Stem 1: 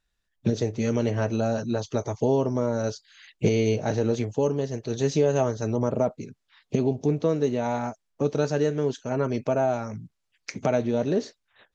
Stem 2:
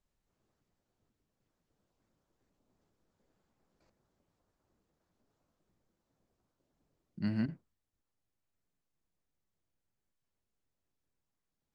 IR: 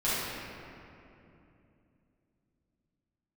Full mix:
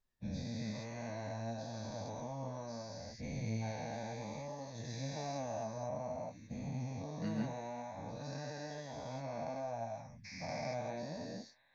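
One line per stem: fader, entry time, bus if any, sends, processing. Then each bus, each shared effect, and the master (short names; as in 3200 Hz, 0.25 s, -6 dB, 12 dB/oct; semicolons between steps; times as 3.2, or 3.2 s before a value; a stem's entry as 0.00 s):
-15.0 dB, 0.00 s, no send, spectral dilation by 0.48 s; fixed phaser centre 2000 Hz, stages 8
-1.5 dB, 0.00 s, no send, dry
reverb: off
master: flange 0.6 Hz, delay 7 ms, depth 8.4 ms, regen +44%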